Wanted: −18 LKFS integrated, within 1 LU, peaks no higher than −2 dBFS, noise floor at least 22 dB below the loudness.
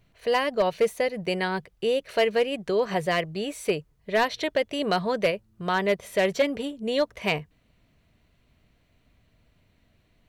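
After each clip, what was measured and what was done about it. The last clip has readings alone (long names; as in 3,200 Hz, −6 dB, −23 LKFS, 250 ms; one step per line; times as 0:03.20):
share of clipped samples 0.5%; peaks flattened at −15.0 dBFS; integrated loudness −26.5 LKFS; sample peak −15.0 dBFS; target loudness −18.0 LKFS
→ clipped peaks rebuilt −15 dBFS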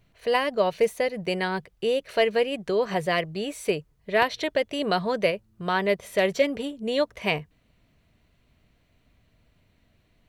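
share of clipped samples 0.0%; integrated loudness −26.0 LKFS; sample peak −6.0 dBFS; target loudness −18.0 LKFS
→ level +8 dB
brickwall limiter −2 dBFS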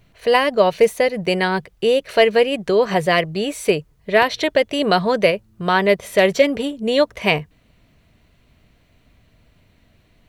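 integrated loudness −18.0 LKFS; sample peak −2.0 dBFS; background noise floor −58 dBFS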